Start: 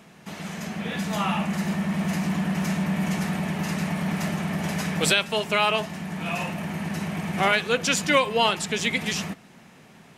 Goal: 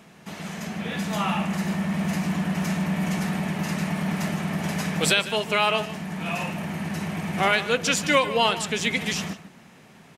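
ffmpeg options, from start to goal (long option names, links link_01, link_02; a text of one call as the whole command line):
ffmpeg -i in.wav -filter_complex "[0:a]asplit=2[link_01][link_02];[link_02]adelay=151.6,volume=-14dB,highshelf=frequency=4000:gain=-3.41[link_03];[link_01][link_03]amix=inputs=2:normalize=0" out.wav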